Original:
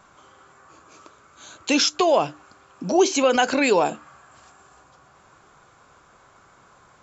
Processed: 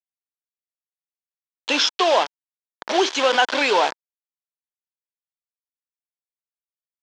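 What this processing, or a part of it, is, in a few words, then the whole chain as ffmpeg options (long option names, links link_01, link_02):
hand-held game console: -af "acrusher=bits=3:mix=0:aa=0.000001,highpass=410,equalizer=frequency=930:width_type=q:width=4:gain=5,equalizer=frequency=1600:width_type=q:width=4:gain=4,equalizer=frequency=3300:width_type=q:width=4:gain=7,lowpass=frequency=5700:width=0.5412,lowpass=frequency=5700:width=1.3066"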